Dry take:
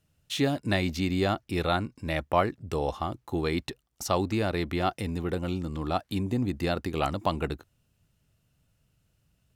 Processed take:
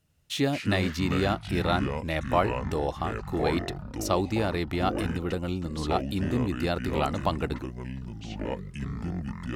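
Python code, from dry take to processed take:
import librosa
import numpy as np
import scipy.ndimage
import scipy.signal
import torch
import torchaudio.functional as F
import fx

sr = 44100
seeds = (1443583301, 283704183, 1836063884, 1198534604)

y = fx.echo_pitch(x, sr, ms=97, semitones=-6, count=3, db_per_echo=-6.0)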